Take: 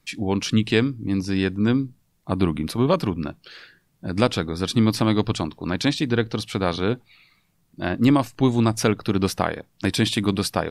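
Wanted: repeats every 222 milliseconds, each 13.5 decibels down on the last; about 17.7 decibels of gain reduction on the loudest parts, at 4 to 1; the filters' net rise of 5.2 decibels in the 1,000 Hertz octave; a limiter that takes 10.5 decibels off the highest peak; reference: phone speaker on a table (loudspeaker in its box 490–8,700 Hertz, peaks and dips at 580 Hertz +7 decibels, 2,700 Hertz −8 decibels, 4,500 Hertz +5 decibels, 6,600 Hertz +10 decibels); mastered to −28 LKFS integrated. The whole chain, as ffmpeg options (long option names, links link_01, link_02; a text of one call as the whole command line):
ffmpeg -i in.wav -af "equalizer=frequency=1000:width_type=o:gain=6,acompressor=threshold=-35dB:ratio=4,alimiter=level_in=5.5dB:limit=-24dB:level=0:latency=1,volume=-5.5dB,highpass=frequency=490:width=0.5412,highpass=frequency=490:width=1.3066,equalizer=frequency=580:width_type=q:width=4:gain=7,equalizer=frequency=2700:width_type=q:width=4:gain=-8,equalizer=frequency=4500:width_type=q:width=4:gain=5,equalizer=frequency=6600:width_type=q:width=4:gain=10,lowpass=frequency=8700:width=0.5412,lowpass=frequency=8700:width=1.3066,aecho=1:1:222|444:0.211|0.0444,volume=15.5dB" out.wav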